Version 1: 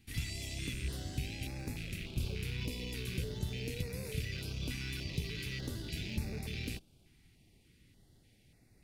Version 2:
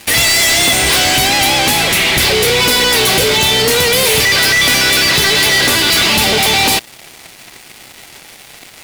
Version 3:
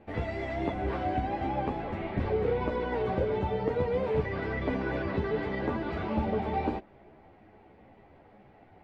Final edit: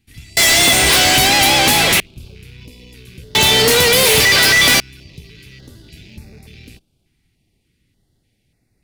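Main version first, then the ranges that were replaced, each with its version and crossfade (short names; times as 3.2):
1
0.37–2 from 2
3.35–4.8 from 2
not used: 3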